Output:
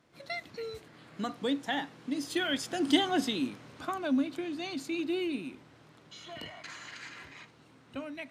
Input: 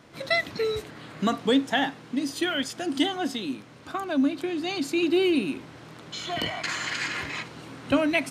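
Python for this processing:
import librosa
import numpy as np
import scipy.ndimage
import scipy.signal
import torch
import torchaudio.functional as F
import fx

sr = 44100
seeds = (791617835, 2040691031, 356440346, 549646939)

y = fx.doppler_pass(x, sr, speed_mps=9, closest_m=5.7, pass_at_s=3.2)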